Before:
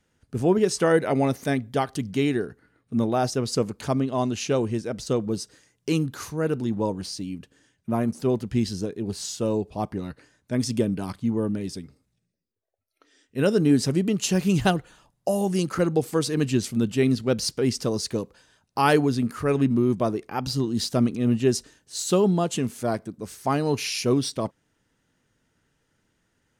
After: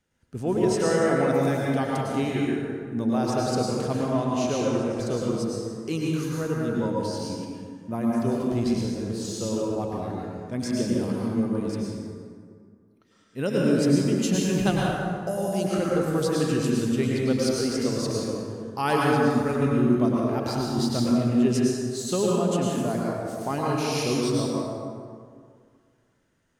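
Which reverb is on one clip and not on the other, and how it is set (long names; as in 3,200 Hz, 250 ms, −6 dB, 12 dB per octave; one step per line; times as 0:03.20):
dense smooth reverb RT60 2.1 s, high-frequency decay 0.5×, pre-delay 90 ms, DRR −4.5 dB
level −6 dB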